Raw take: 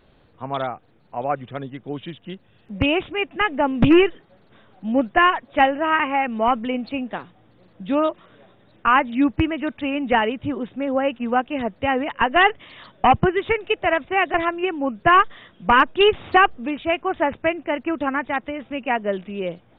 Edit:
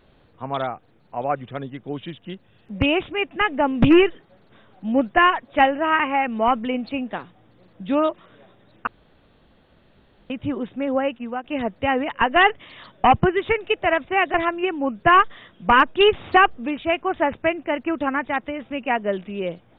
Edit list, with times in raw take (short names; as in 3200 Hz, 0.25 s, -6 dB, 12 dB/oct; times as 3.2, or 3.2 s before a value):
8.87–10.3 room tone
10.94–11.44 fade out, to -12.5 dB